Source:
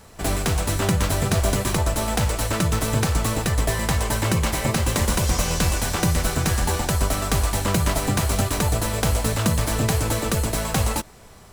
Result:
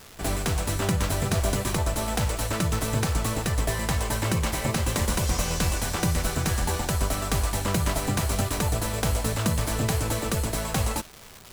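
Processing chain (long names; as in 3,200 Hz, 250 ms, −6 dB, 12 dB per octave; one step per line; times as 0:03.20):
surface crackle 550 per second −29 dBFS
level −4 dB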